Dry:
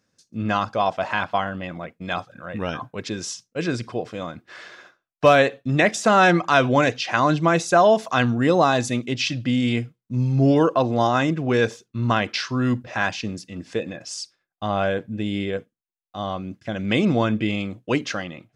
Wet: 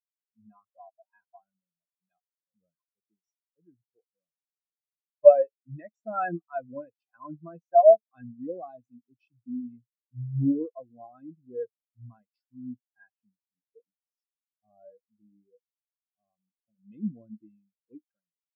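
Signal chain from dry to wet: treble shelf 4.2 kHz +9 dB; spectral contrast expander 4:1

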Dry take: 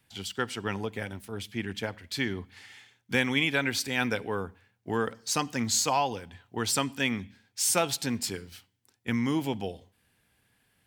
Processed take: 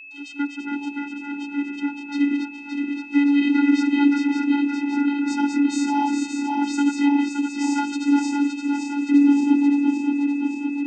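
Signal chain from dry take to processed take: backward echo that repeats 285 ms, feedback 80%, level -4 dB; vocoder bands 16, square 285 Hz; whistle 2.6 kHz -47 dBFS; trim +8.5 dB

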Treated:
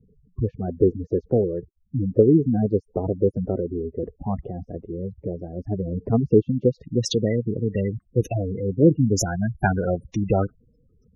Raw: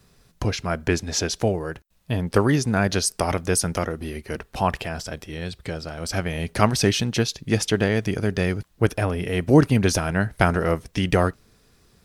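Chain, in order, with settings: spectral gate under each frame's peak -10 dB strong; low-pass sweep 380 Hz -> 8.1 kHz, 7.14–7.76 s; tape speed +8%

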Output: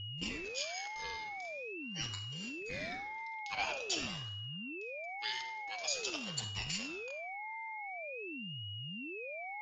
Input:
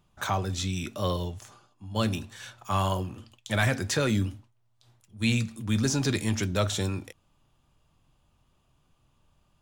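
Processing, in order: differentiator; simulated room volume 2100 m³, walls furnished, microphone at 2.1 m; whistle 1.5 kHz -44 dBFS; rippled Chebyshev low-pass 6 kHz, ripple 9 dB; ring modulator with a swept carrier 1 kHz, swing 40%, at 0.46 Hz; trim +7 dB

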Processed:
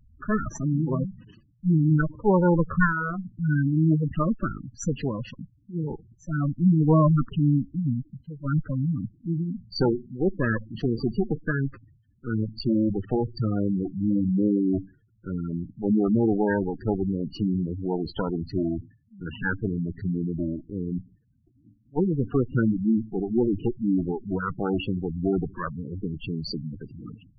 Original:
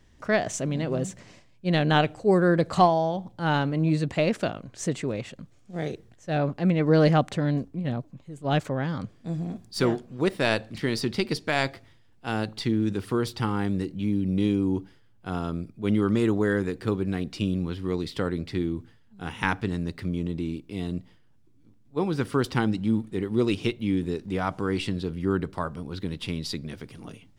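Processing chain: comb filter that takes the minimum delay 0.68 ms; low-pass that closes with the level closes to 2.4 kHz, closed at -24 dBFS; spectral gate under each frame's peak -10 dB strong; trim +4.5 dB

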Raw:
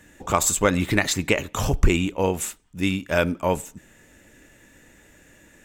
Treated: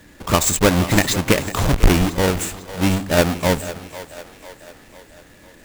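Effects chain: square wave that keeps the level; two-band feedback delay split 390 Hz, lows 170 ms, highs 498 ms, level -14 dB

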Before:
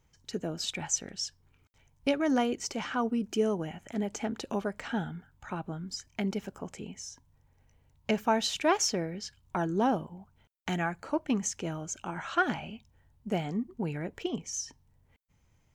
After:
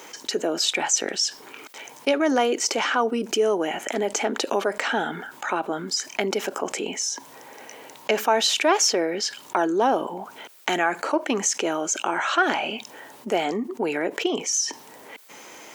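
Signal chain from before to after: high-pass 320 Hz 24 dB/octave; level flattener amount 50%; trim +5.5 dB

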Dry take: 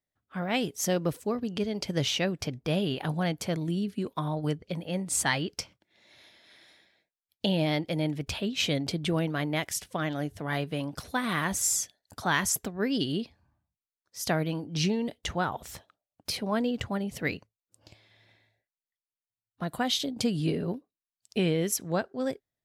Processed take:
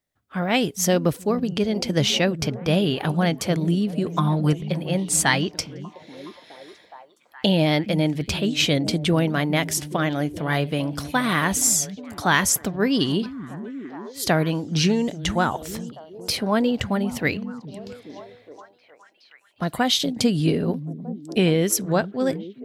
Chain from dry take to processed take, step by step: 4.13–4.53 s: comb 5.8 ms; 13.94–14.22 s: spectral replace 3.1–6.9 kHz both; repeats whose band climbs or falls 417 ms, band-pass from 180 Hz, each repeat 0.7 oct, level -9 dB; trim +7.5 dB

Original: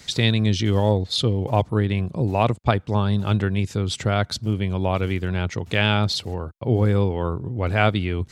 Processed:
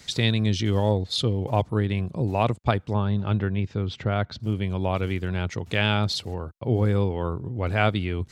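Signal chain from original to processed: 2.93–4.40 s: distance through air 230 m; trim -3 dB

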